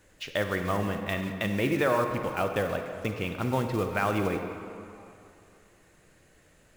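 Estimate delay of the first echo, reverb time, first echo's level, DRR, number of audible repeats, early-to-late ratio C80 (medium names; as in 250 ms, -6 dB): no echo, 2.7 s, no echo, 5.5 dB, no echo, 7.0 dB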